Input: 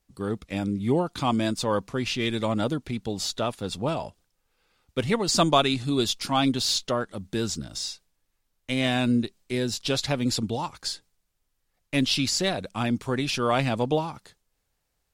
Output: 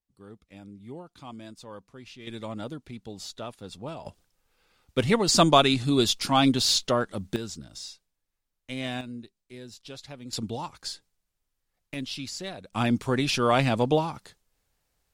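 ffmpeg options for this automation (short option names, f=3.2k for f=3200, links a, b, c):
-af "asetnsamples=n=441:p=0,asendcmd='2.27 volume volume -10dB;4.06 volume volume 2dB;7.36 volume volume -8dB;9.01 volume volume -16.5dB;10.33 volume volume -4.5dB;11.94 volume volume -11dB;12.73 volume volume 1.5dB',volume=-18dB"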